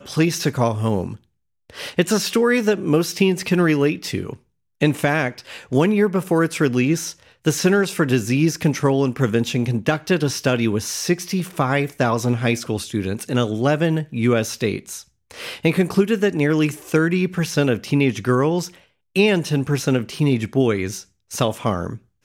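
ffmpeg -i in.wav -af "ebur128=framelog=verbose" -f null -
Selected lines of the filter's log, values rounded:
Integrated loudness:
  I:         -20.1 LUFS
  Threshold: -30.6 LUFS
Loudness range:
  LRA:         1.9 LU
  Threshold: -40.4 LUFS
  LRA low:   -21.4 LUFS
  LRA high:  -19.5 LUFS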